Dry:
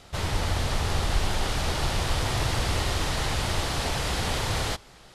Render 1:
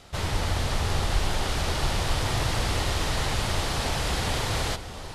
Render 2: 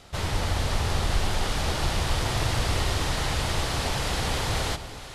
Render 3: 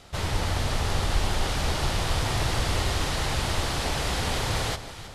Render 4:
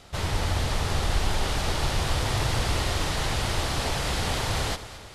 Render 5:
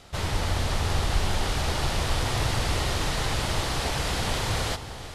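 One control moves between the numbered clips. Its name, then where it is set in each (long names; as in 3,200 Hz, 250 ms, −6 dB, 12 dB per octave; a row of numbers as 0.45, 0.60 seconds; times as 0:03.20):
delay that swaps between a low-pass and a high-pass, delay time: 671, 235, 160, 109, 345 milliseconds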